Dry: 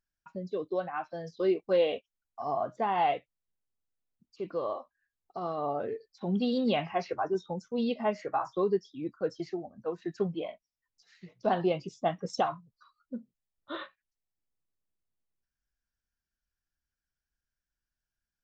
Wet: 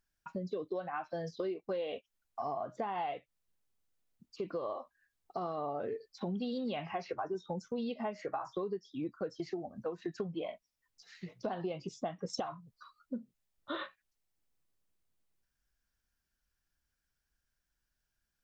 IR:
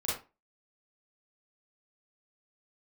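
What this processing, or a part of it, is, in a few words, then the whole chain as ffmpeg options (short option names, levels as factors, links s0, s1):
serial compression, peaks first: -af "acompressor=threshold=0.0178:ratio=6,acompressor=threshold=0.00447:ratio=1.5,volume=1.88"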